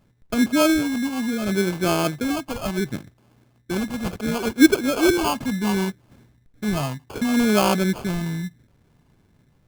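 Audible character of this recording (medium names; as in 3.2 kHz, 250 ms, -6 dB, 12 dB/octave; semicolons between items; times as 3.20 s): phasing stages 12, 0.69 Hz, lowest notch 390–2900 Hz; aliases and images of a low sample rate 1.9 kHz, jitter 0%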